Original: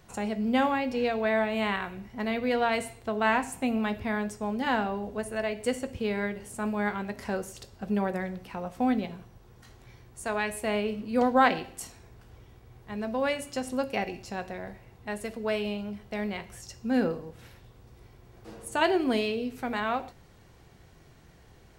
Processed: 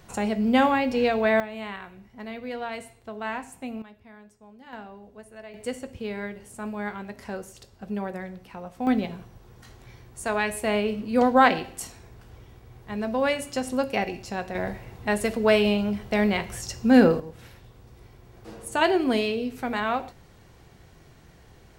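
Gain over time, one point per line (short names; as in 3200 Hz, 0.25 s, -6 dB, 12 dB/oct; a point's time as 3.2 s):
+5 dB
from 1.4 s -7 dB
from 3.82 s -19 dB
from 4.73 s -12.5 dB
from 5.54 s -3 dB
from 8.87 s +4 dB
from 14.55 s +10 dB
from 17.2 s +3 dB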